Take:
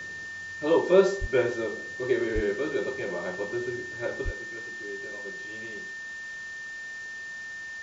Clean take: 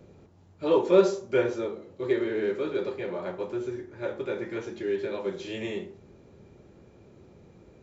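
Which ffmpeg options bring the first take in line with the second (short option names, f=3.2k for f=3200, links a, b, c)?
-filter_complex "[0:a]bandreject=f=1.8k:w=30,asplit=3[a][b][c];[a]afade=t=out:st=1.2:d=0.02[d];[b]highpass=f=140:w=0.5412,highpass=f=140:w=1.3066,afade=t=in:st=1.2:d=0.02,afade=t=out:st=1.32:d=0.02[e];[c]afade=t=in:st=1.32:d=0.02[f];[d][e][f]amix=inputs=3:normalize=0,asplit=3[g][h][i];[g]afade=t=out:st=2.34:d=0.02[j];[h]highpass=f=140:w=0.5412,highpass=f=140:w=1.3066,afade=t=in:st=2.34:d=0.02,afade=t=out:st=2.46:d=0.02[k];[i]afade=t=in:st=2.46:d=0.02[l];[j][k][l]amix=inputs=3:normalize=0,asplit=3[m][n][o];[m]afade=t=out:st=4.24:d=0.02[p];[n]highpass=f=140:w=0.5412,highpass=f=140:w=1.3066,afade=t=in:st=4.24:d=0.02,afade=t=out:st=4.36:d=0.02[q];[o]afade=t=in:st=4.36:d=0.02[r];[p][q][r]amix=inputs=3:normalize=0,afwtdn=0.0045,asetnsamples=n=441:p=0,asendcmd='4.27 volume volume 11.5dB',volume=0dB"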